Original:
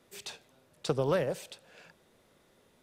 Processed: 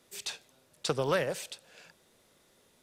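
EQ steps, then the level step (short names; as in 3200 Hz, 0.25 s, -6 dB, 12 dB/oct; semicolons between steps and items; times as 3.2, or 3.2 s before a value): dynamic EQ 1800 Hz, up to +6 dB, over -49 dBFS, Q 0.71; tone controls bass -1 dB, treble +3 dB; bell 7400 Hz +5 dB 2.9 oct; -2.0 dB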